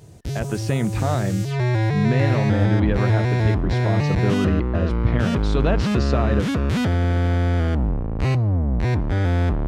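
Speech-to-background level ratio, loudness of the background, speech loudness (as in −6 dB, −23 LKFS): −3.5 dB, −22.0 LKFS, −25.5 LKFS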